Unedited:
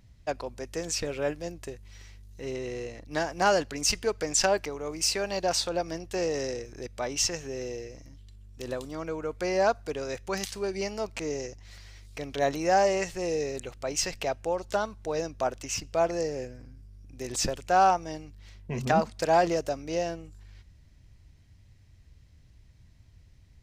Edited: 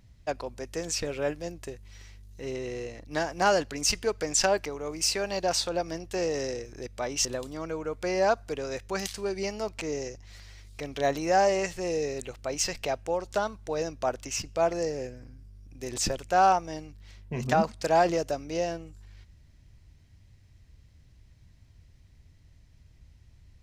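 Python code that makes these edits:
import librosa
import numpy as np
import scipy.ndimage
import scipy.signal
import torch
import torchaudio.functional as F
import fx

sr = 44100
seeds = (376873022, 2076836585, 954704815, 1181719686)

y = fx.edit(x, sr, fx.cut(start_s=7.25, length_s=1.38), tone=tone)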